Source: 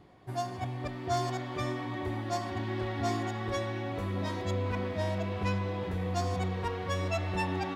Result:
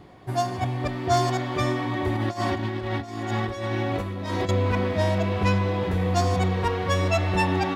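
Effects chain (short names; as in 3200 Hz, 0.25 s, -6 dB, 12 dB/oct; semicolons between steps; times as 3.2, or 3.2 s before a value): 2.15–4.49 negative-ratio compressor -36 dBFS, ratio -0.5; gain +9 dB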